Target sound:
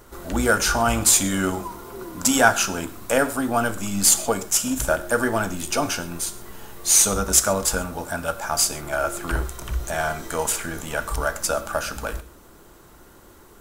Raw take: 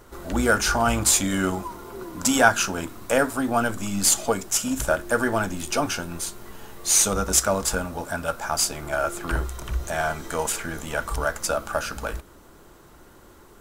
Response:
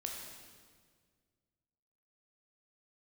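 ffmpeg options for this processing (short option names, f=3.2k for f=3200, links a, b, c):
-filter_complex "[0:a]highshelf=f=7.8k:g=5,asplit=2[a][b];[1:a]atrim=start_sample=2205,afade=t=out:st=0.19:d=0.01,atrim=end_sample=8820[c];[b][c]afir=irnorm=-1:irlink=0,volume=-6dB[d];[a][d]amix=inputs=2:normalize=0,volume=-2dB"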